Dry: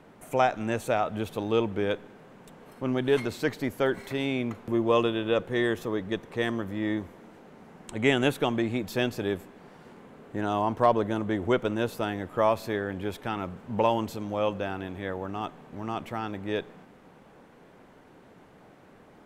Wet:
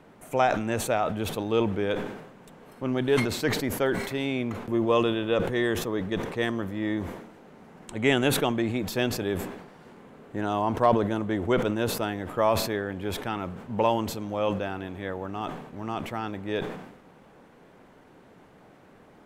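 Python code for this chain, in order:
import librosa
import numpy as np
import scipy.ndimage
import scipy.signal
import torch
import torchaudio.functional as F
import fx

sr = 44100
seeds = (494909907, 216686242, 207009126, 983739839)

y = fx.sustainer(x, sr, db_per_s=62.0)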